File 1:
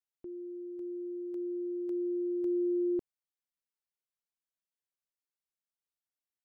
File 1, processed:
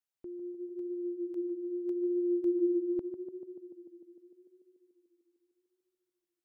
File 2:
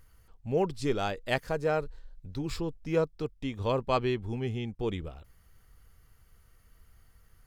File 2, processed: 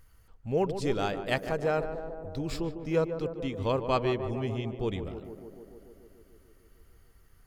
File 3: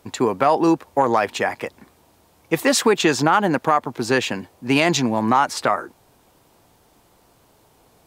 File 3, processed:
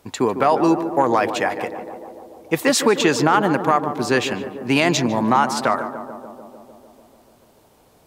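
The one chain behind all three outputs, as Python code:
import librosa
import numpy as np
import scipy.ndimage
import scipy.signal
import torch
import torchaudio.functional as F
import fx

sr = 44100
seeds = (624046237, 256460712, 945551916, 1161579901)

y = fx.echo_tape(x, sr, ms=148, feedback_pct=85, wet_db=-8, lp_hz=1200.0, drive_db=5.0, wow_cents=32)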